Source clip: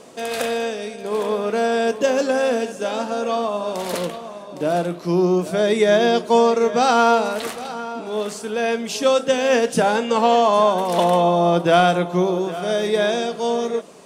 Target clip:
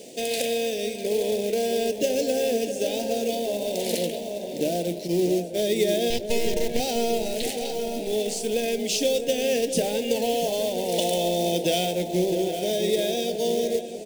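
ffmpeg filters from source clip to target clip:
-filter_complex "[0:a]highpass=f=280:p=1,asplit=3[a][b][c];[a]afade=t=out:st=5.06:d=0.02[d];[b]agate=range=-33dB:threshold=-17dB:ratio=3:detection=peak,afade=t=in:st=5.06:d=0.02,afade=t=out:st=5.58:d=0.02[e];[c]afade=t=in:st=5.58:d=0.02[f];[d][e][f]amix=inputs=3:normalize=0,asettb=1/sr,asplit=3[g][h][i];[g]atrim=end=10.984[j];[h]atrim=start=10.98:end=11.85,asetpts=PTS-STARTPTS,afade=t=in:d=0.004:c=qsin,afade=t=out:st=0.866:d=0.004:c=qsin,equalizer=f=7.9k:t=o:w=2.7:g=9.5[k];[i]atrim=start=11.846[l];[j][k]acrossfade=d=0.004:c1=hsin:c2=qsin[m];[m][l]acrossfade=d=0.004:c1=qsin:c2=hsin,acompressor=threshold=-26dB:ratio=2.5,asettb=1/sr,asplit=3[n][o][p];[n]atrim=end=6.104[q];[o]atrim=start=6.1:end=6.8,asetpts=PTS-STARTPTS,afade=t=in:d=0.004:c=qsin,afade=t=out:st=0.696:d=0.004:c=qsin,aeval=exprs='0.188*(cos(1*acos(clip(val(0)/0.188,-1,1)))-cos(1*PI/2))+0.0376*(cos(3*acos(clip(val(0)/0.188,-1,1)))-cos(3*PI/2))+0.0376*(cos(6*acos(clip(val(0)/0.188,-1,1)))-cos(6*PI/2))':c=same[r];[p]atrim=start=6.796[s];[q][r]acrossfade=d=0.004:c1=hsin:c2=qsin[t];[t][s]acrossfade=d=0.004:c1=qsin:c2=hsin,acrusher=bits=3:mode=log:mix=0:aa=0.000001,asuperstop=centerf=1200:order=4:qfactor=0.63,asplit=2[u][v];[v]adelay=657,lowpass=f=1.3k:p=1,volume=-8dB,asplit=2[w][x];[x]adelay=657,lowpass=f=1.3k:p=1,volume=0.55,asplit=2[y][z];[z]adelay=657,lowpass=f=1.3k:p=1,volume=0.55,asplit=2[aa][ab];[ab]adelay=657,lowpass=f=1.3k:p=1,volume=0.55,asplit=2[ac][ad];[ad]adelay=657,lowpass=f=1.3k:p=1,volume=0.55,asplit=2[ae][af];[af]adelay=657,lowpass=f=1.3k:p=1,volume=0.55,asplit=2[ag][ah];[ah]adelay=657,lowpass=f=1.3k:p=1,volume=0.55[ai];[u][w][y][aa][ac][ae][ag][ai]amix=inputs=8:normalize=0,volume=4dB"

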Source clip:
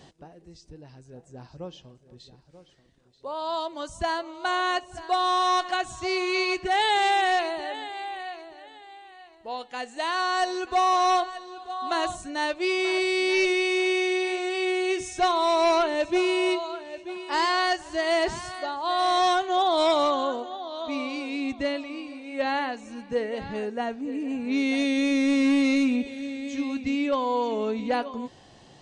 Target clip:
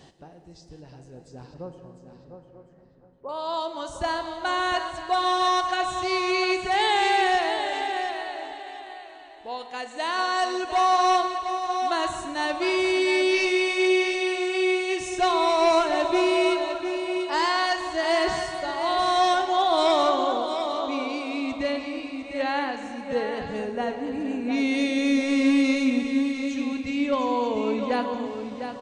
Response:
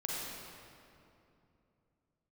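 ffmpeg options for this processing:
-filter_complex "[0:a]asettb=1/sr,asplit=3[a][b][c];[a]atrim=end=1.544[d];[b]atrim=start=1.54:end=3.29,asetpts=PTS-STARTPTS,afade=t=in:d=0.004:c=qsin,afade=t=out:st=1.746:d=0.004:c=qsin,lowpass=f=1.7k:w=0.5412,lowpass=f=1.7k:w=1.3066[e];[c]atrim=start=3.286[f];[d][e]acrossfade=d=0.004:c1=hsin:c2=qsin[g];[g][f]acrossfade=d=0.004:c1=qsin:c2=hsin,aecho=1:1:703|1406|2109:0.376|0.0714|0.0136,asplit=2[h][i];[1:a]atrim=start_sample=2205,adelay=46[j];[i][j]afir=irnorm=-1:irlink=0,volume=-11.5dB[k];[h][k]amix=inputs=2:normalize=0"

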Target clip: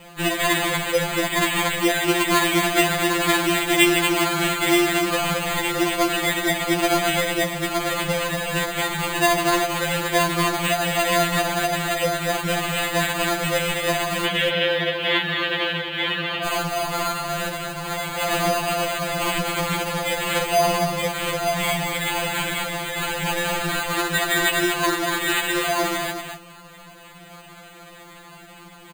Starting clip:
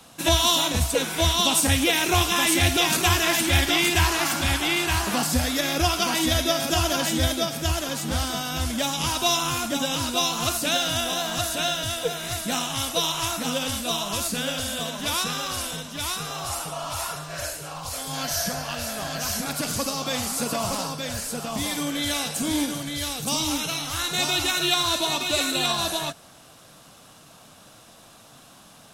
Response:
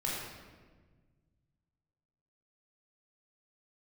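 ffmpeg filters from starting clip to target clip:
-filter_complex "[0:a]alimiter=limit=-16dB:level=0:latency=1:release=243,acrusher=samples=8:mix=1:aa=0.000001,asettb=1/sr,asplit=3[a][b][c];[a]atrim=end=14.254[d];[b]atrim=start=14.25:end=16.44,asetpts=PTS-STARTPTS,afade=t=in:d=0.004:c=qsin,afade=t=out:st=2.186:d=0.004:c=qsin,highpass=210,equalizer=f=270:t=q:w=4:g=6,equalizer=f=460:t=q:w=4:g=5,equalizer=f=740:t=q:w=4:g=-5,equalizer=f=1.2k:t=q:w=4:g=-7,equalizer=f=1.7k:t=q:w=4:g=4,equalizer=f=3.2k:t=q:w=4:g=9,lowpass=f=3.7k:w=0.5412,lowpass=f=3.7k:w=1.3066[e];[c]atrim=start=16.436[f];[d][e]acrossfade=d=0.004:c1=hsin:c2=qsin[g];[g][f]acrossfade=d=0.004:c1=qsin:c2=hsin,aecho=1:1:236:0.473,acrusher=bits=8:mode=log:mix=0:aa=0.000001,afftfilt=real='re*2.83*eq(mod(b,8),0)':imag='im*2.83*eq(mod(b,8),0)':win_size=2048:overlap=0.75,volume=7.5dB"

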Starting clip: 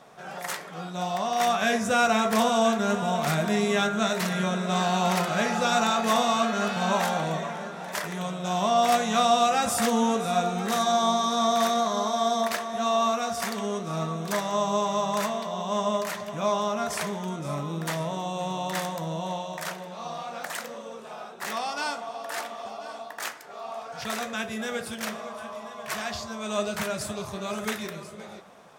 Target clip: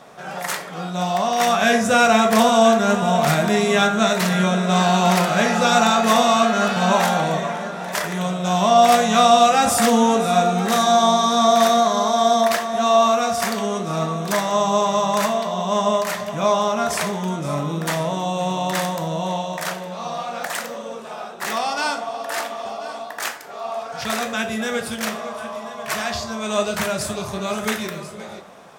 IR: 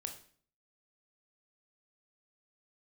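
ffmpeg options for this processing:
-filter_complex "[0:a]asplit=2[a][b];[1:a]atrim=start_sample=2205,atrim=end_sample=4410[c];[b][c]afir=irnorm=-1:irlink=0,volume=5dB[d];[a][d]amix=inputs=2:normalize=0"

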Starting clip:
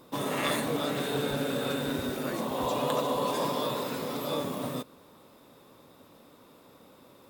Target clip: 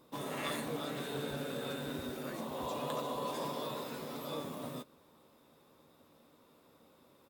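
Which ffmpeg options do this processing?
-filter_complex "[0:a]asplit=2[a][b];[b]adelay=13,volume=-10.5dB[c];[a][c]amix=inputs=2:normalize=0,volume=-9dB"

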